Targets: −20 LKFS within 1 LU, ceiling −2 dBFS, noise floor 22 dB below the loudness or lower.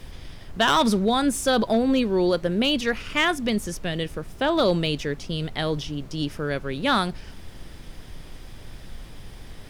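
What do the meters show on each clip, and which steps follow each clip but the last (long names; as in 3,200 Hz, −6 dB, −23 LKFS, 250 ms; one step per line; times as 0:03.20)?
share of clipped samples 0.4%; peaks flattened at −13.0 dBFS; background noise floor −43 dBFS; target noise floor −46 dBFS; integrated loudness −23.5 LKFS; sample peak −13.0 dBFS; target loudness −20.0 LKFS
→ clipped peaks rebuilt −13 dBFS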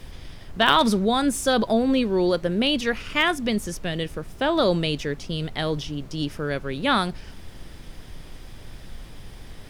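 share of clipped samples 0.0%; background noise floor −43 dBFS; target noise floor −46 dBFS
→ noise reduction from a noise print 6 dB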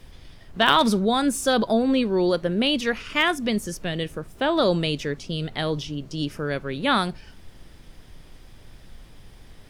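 background noise floor −48 dBFS; integrated loudness −23.5 LKFS; sample peak −4.0 dBFS; target loudness −20.0 LKFS
→ level +3.5 dB
brickwall limiter −2 dBFS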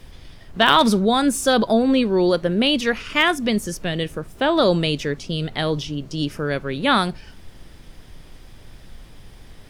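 integrated loudness −20.0 LKFS; sample peak −2.0 dBFS; background noise floor −45 dBFS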